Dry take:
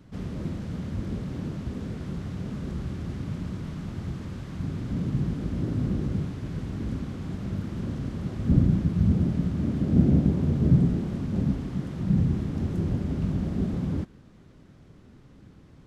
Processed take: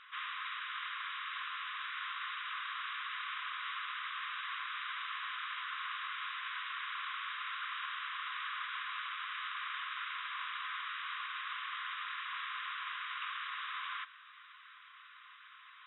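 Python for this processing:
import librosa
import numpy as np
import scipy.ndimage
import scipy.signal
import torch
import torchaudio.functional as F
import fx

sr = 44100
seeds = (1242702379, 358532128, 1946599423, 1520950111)

y = fx.brickwall_bandpass(x, sr, low_hz=1000.0, high_hz=3900.0)
y = y * librosa.db_to_amplitude(12.5)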